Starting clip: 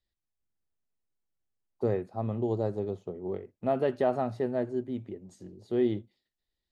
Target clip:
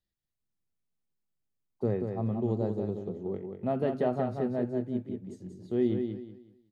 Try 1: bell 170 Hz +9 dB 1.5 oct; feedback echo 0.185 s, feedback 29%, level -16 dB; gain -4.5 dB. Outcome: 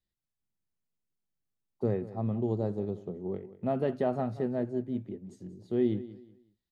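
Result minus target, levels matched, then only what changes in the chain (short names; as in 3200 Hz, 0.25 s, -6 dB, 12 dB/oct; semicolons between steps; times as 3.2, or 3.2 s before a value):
echo-to-direct -10 dB
change: feedback echo 0.185 s, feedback 29%, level -6 dB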